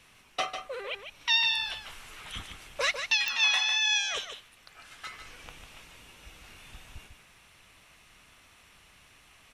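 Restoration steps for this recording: de-click; inverse comb 0.149 s -8 dB

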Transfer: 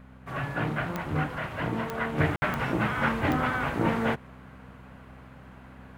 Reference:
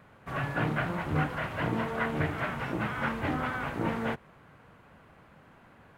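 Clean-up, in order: de-click; de-hum 64.2 Hz, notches 4; room tone fill 2.36–2.42; gain 0 dB, from 2.18 s -5 dB

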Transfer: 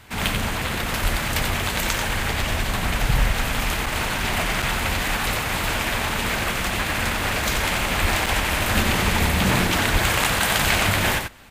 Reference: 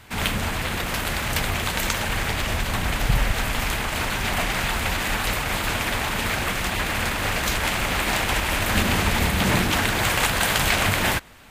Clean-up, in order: de-plosive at 1.02/8.01/9.92; interpolate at 3.86/4.62/8.26/10.24, 4.9 ms; inverse comb 90 ms -6 dB

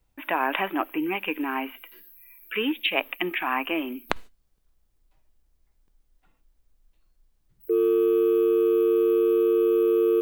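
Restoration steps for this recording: interpolate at 3.34/4.58/5.88, 1.5 ms

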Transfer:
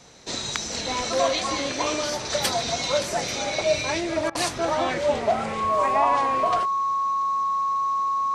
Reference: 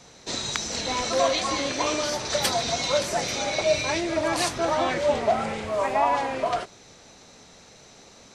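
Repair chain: notch 1100 Hz, Q 30; interpolate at 4.3, 49 ms

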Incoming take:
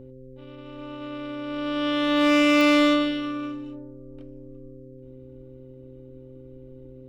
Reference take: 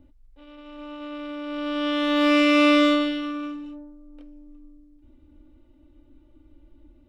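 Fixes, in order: clip repair -13 dBFS; de-click; de-hum 129.8 Hz, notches 4

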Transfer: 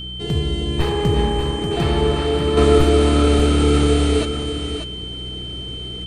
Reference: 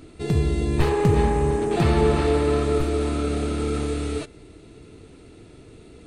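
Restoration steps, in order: de-hum 61.8 Hz, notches 3; notch 3100 Hz, Q 30; inverse comb 0.589 s -8 dB; gain 0 dB, from 2.57 s -8.5 dB

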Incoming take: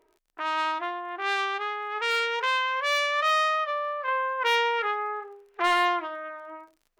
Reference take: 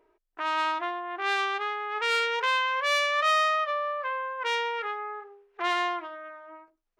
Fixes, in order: clip repair -13.5 dBFS; de-click; gain correction -5 dB, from 4.08

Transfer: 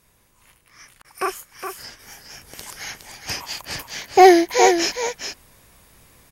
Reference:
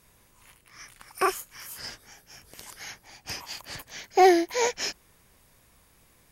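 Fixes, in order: interpolate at 1.02, 24 ms; inverse comb 0.414 s -7.5 dB; gain correction -7.5 dB, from 1.99

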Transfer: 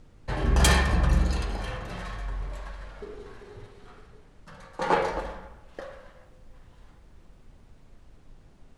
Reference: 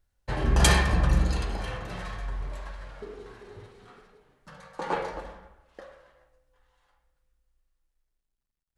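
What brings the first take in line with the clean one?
clip repair -12 dBFS; noise print and reduce 22 dB; gain correction -6 dB, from 4.81

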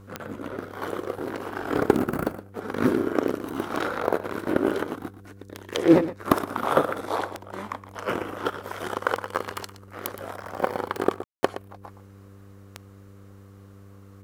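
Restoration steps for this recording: de-click; de-hum 98.6 Hz, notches 5; room tone fill 11.24–11.43; inverse comb 0.119 s -14 dB

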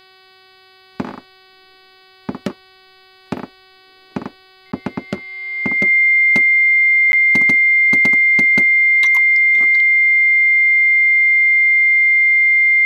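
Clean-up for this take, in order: clip repair -8 dBFS; de-hum 377 Hz, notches 13; notch 2100 Hz, Q 30; interpolate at 4.72/7.12, 11 ms

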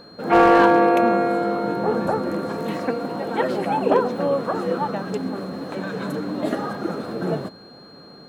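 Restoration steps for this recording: clip repair -8 dBFS; notch 4200 Hz, Q 30

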